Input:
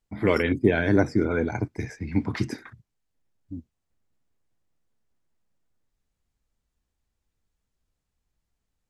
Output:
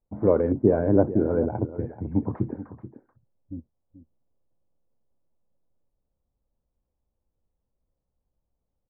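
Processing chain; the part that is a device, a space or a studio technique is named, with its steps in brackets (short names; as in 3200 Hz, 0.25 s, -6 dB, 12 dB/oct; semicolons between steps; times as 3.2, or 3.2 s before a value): under water (LPF 1000 Hz 24 dB/oct; bell 540 Hz +8 dB 0.29 oct); notch 2000 Hz, Q 16; echo 0.433 s -14 dB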